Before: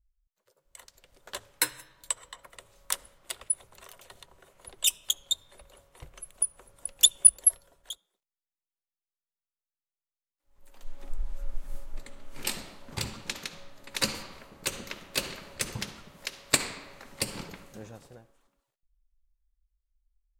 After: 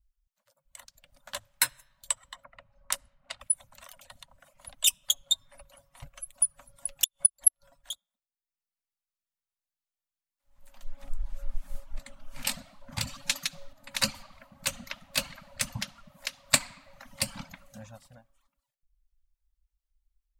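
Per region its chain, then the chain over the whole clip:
2.44–3.40 s: band-stop 3.4 kHz + level-controlled noise filter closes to 1.7 kHz, open at -29.5 dBFS
5.01–7.92 s: comb 7.2 ms, depth 38% + inverted gate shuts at -8 dBFS, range -35 dB
13.07–13.73 s: treble shelf 3.4 kHz +7.5 dB + comb 6.9 ms, depth 56%
whole clip: reverb removal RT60 0.78 s; elliptic band-stop 270–550 Hz; trim +1.5 dB

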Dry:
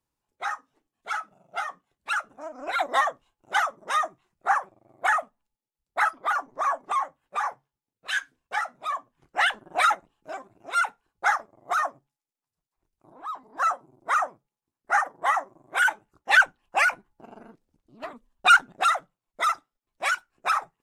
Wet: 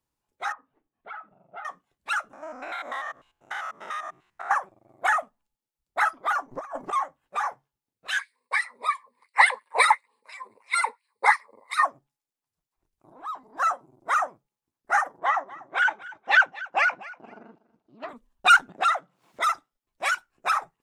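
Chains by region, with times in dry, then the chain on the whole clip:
0.52–1.65 s: Gaussian low-pass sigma 3.3 samples + compression 2:1, threshold -41 dBFS
2.33–4.51 s: spectrogram pixelated in time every 100 ms + peaking EQ 2 kHz +8 dB 2 oct + compression 3:1, threshold -33 dBFS
6.51–6.93 s: bass shelf 250 Hz +8.5 dB + band-stop 3.6 kHz, Q 14 + compressor with a negative ratio -32 dBFS, ratio -0.5
8.19–11.85 s: rippled EQ curve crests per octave 0.94, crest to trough 18 dB + LFO high-pass sine 2.9 Hz 320–2900 Hz
15.19–18.09 s: band-pass 150–6500 Hz + distance through air 91 m + feedback delay 241 ms, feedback 19%, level -19 dB
18.69–19.42 s: high-pass 140 Hz 24 dB/octave + treble shelf 7 kHz -12 dB + upward compressor, threshold -38 dBFS
whole clip: none

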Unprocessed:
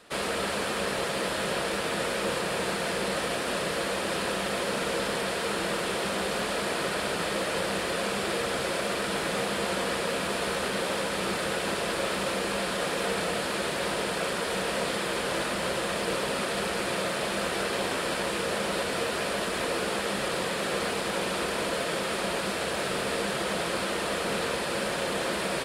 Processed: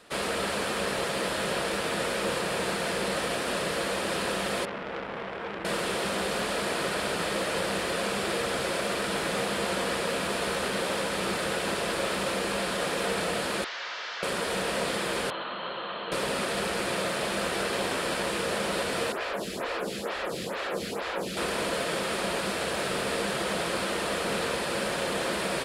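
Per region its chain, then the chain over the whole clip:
4.65–5.65 s: Savitzky-Golay filter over 25 samples + treble shelf 2.3 kHz -9 dB + transformer saturation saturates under 1.8 kHz
13.64–14.23 s: one-bit delta coder 32 kbps, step -38.5 dBFS + high-pass 1.3 kHz + band-stop 2.5 kHz, Q 20
15.30–16.12 s: rippled Chebyshev low-pass 4.3 kHz, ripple 9 dB + peaking EQ 60 Hz -14.5 dB 1.5 oct
19.12–21.37 s: peaking EQ 9 kHz -9.5 dB 0.23 oct + lamp-driven phase shifter 2.2 Hz
whole clip: none

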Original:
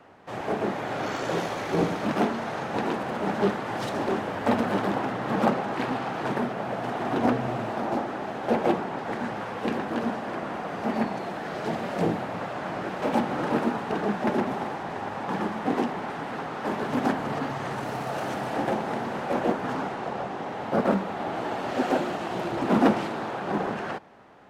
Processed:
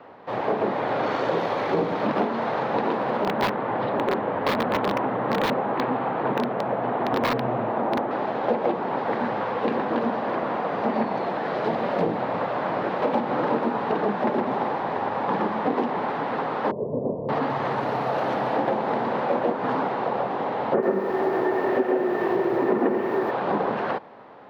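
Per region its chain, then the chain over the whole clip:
3.24–8.11 s: distance through air 340 m + integer overflow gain 18.5 dB
16.71–17.29 s: Gaussian low-pass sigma 16 samples + comb 1.9 ms, depth 62%
20.74–23.31 s: low-pass 2.8 kHz 24 dB/octave + small resonant body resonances 380/1800 Hz, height 16 dB, ringing for 70 ms + bit-crushed delay 86 ms, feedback 35%, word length 6-bit, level -8 dB
whole clip: graphic EQ 125/250/500/1000/2000/4000/8000 Hz +7/+7/+12/+11/+6/+10/-11 dB; compression 6:1, threshold -13 dBFS; trim -6.5 dB

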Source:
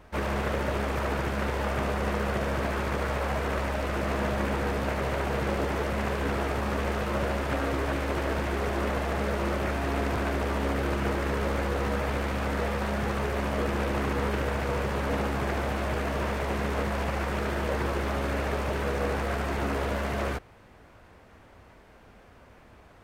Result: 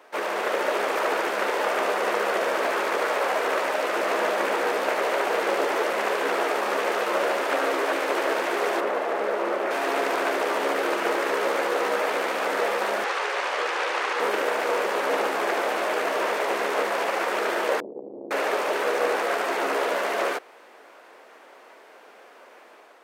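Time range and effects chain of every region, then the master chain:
8.80–9.71 s: elliptic high-pass 200 Hz + treble shelf 2.6 kHz -10.5 dB
13.04–14.20 s: band-pass 500–5700 Hz + tilt EQ +1.5 dB/octave + band-stop 650 Hz, Q 9.8
17.80–18.31 s: inverse Chebyshev low-pass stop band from 1.1 kHz, stop band 60 dB + loudspeaker Doppler distortion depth 0.91 ms
whole clip: high-pass 370 Hz 24 dB/octave; level rider gain up to 3 dB; trim +4 dB

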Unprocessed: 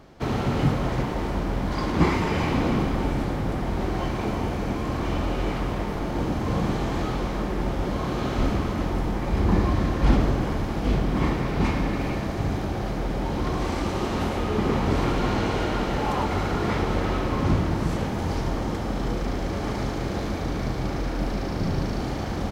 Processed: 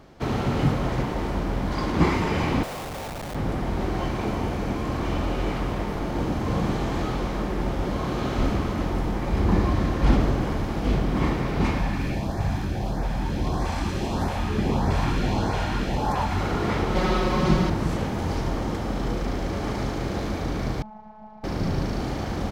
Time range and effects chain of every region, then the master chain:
2.63–3.35 s: steep high-pass 530 Hz + Schmitt trigger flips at -31.5 dBFS
11.78–16.40 s: comb 1.2 ms, depth 30% + LFO notch saw up 1.6 Hz 240–3300 Hz
16.95–17.70 s: peaking EQ 4.4 kHz +4.5 dB 1.1 oct + comb 5.4 ms, depth 91%
20.82–21.44 s: two resonant band-passes 320 Hz, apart 2.7 oct + robot voice 215 Hz
whole clip: none

